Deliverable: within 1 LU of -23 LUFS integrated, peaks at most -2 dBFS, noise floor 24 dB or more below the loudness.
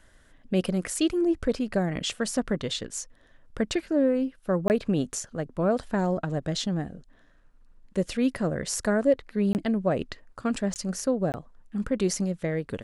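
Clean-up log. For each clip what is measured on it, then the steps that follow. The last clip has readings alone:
dropouts 4; longest dropout 19 ms; loudness -27.5 LUFS; peak level -11.0 dBFS; loudness target -23.0 LUFS
-> interpolate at 4.68/9.53/10.74/11.32 s, 19 ms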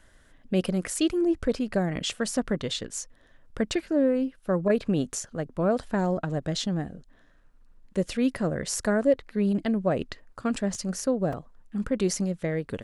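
dropouts 0; loudness -27.5 LUFS; peak level -11.0 dBFS; loudness target -23.0 LUFS
-> trim +4.5 dB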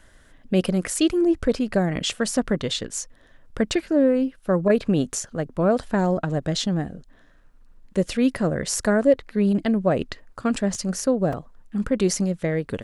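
loudness -23.0 LUFS; peak level -6.5 dBFS; noise floor -53 dBFS

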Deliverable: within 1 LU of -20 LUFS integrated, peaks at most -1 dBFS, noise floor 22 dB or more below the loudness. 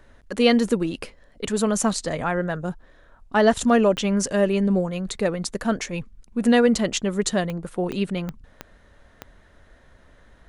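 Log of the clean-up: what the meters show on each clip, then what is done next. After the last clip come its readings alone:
clicks found 6; loudness -22.5 LUFS; peak level -4.5 dBFS; loudness target -20.0 LUFS
-> de-click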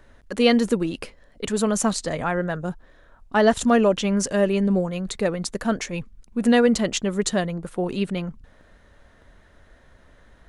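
clicks found 0; loudness -22.5 LUFS; peak level -4.5 dBFS; loudness target -20.0 LUFS
-> trim +2.5 dB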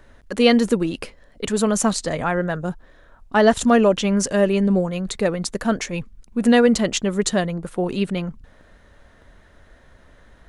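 loudness -20.0 LUFS; peak level -2.0 dBFS; noise floor -52 dBFS

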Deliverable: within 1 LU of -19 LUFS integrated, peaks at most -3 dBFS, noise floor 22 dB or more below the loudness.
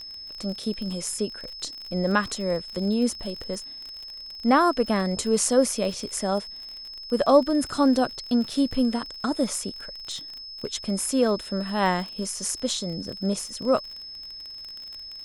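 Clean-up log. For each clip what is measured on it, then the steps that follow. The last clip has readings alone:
tick rate 38 per s; steady tone 5.2 kHz; tone level -37 dBFS; loudness -25.5 LUFS; peak level -6.0 dBFS; loudness target -19.0 LUFS
-> de-click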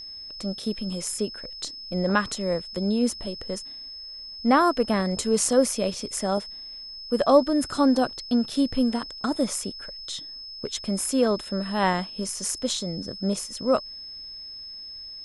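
tick rate 0 per s; steady tone 5.2 kHz; tone level -37 dBFS
-> band-stop 5.2 kHz, Q 30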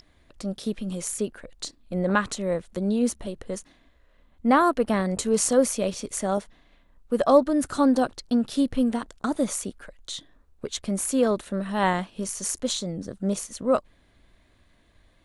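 steady tone not found; loudness -25.5 LUFS; peak level -6.0 dBFS; loudness target -19.0 LUFS
-> trim +6.5 dB; peak limiter -3 dBFS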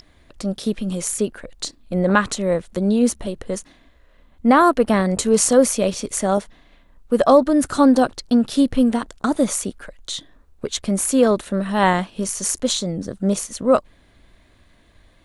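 loudness -19.5 LUFS; peak level -3.0 dBFS; noise floor -55 dBFS

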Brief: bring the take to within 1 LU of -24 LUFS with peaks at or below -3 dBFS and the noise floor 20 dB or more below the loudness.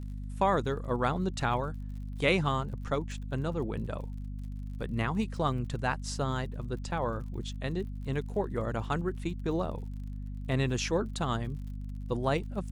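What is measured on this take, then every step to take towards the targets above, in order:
tick rate 47 per s; hum 50 Hz; highest harmonic 250 Hz; hum level -35 dBFS; loudness -33.0 LUFS; peak level -13.0 dBFS; loudness target -24.0 LUFS
-> de-click; de-hum 50 Hz, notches 5; trim +9 dB

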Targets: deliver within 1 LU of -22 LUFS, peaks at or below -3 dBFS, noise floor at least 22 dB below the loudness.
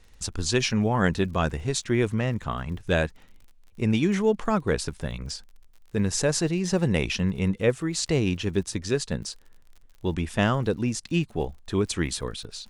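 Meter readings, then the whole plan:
tick rate 53 per s; loudness -26.5 LUFS; peak level -8.5 dBFS; loudness target -22.0 LUFS
-> de-click; trim +4.5 dB

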